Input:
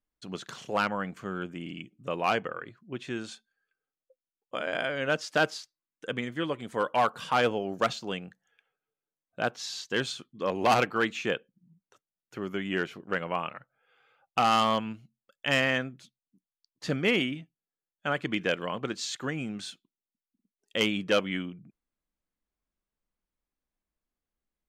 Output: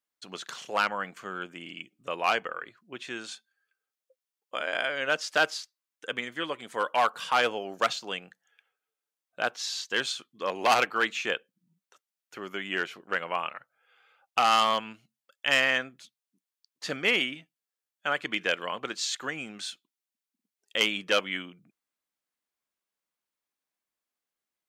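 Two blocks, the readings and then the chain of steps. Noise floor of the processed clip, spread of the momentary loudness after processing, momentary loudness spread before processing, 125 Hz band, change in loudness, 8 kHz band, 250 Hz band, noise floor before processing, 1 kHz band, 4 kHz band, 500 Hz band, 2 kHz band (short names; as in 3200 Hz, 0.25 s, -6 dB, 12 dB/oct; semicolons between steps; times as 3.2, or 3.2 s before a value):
under -85 dBFS, 17 LU, 16 LU, -12.0 dB, +1.0 dB, +4.0 dB, -7.5 dB, under -85 dBFS, +1.0 dB, +3.5 dB, -2.0 dB, +3.0 dB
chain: HPF 920 Hz 6 dB/oct; gain +4 dB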